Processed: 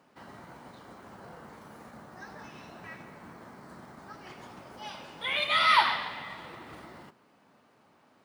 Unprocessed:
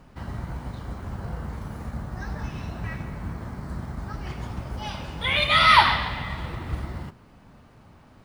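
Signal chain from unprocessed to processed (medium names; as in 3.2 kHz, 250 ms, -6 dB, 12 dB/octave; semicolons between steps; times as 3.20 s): high-pass 290 Hz 12 dB/octave; trim -6.5 dB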